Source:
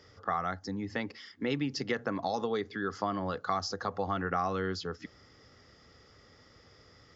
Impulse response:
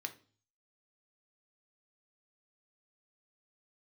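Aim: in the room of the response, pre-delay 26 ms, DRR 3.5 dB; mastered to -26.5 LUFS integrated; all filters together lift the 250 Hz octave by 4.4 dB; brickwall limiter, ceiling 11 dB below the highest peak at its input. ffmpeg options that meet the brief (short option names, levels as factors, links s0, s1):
-filter_complex "[0:a]equalizer=f=250:t=o:g=5.5,alimiter=level_in=1.33:limit=0.0631:level=0:latency=1,volume=0.75,asplit=2[s0][s1];[1:a]atrim=start_sample=2205,adelay=26[s2];[s1][s2]afir=irnorm=-1:irlink=0,volume=0.75[s3];[s0][s3]amix=inputs=2:normalize=0,volume=2.99"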